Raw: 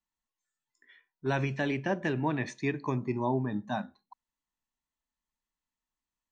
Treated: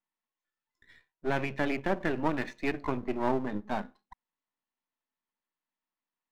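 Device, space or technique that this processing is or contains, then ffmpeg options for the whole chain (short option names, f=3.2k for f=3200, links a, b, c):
crystal radio: -af "highpass=210,lowpass=2.9k,aeval=exprs='if(lt(val(0),0),0.251*val(0),val(0))':c=same,volume=4.5dB"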